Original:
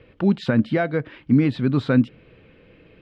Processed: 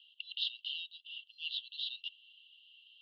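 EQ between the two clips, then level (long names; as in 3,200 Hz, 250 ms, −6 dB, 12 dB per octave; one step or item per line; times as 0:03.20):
linear-phase brick-wall high-pass 2,700 Hz
low-pass filter 3,600 Hz 24 dB per octave
high-frequency loss of the air 190 metres
+12.5 dB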